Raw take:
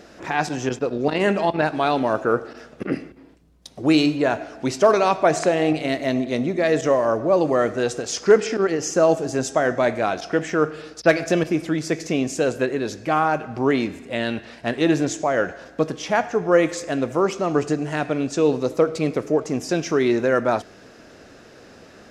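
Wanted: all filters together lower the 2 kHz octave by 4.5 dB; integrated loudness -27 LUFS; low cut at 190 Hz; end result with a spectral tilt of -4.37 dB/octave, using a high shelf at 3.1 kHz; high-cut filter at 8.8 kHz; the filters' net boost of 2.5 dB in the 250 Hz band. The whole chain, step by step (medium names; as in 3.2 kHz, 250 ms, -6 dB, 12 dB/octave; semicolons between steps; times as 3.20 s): high-pass 190 Hz; low-pass 8.8 kHz; peaking EQ 250 Hz +4.5 dB; peaking EQ 2 kHz -9 dB; treble shelf 3.1 kHz +8 dB; trim -6.5 dB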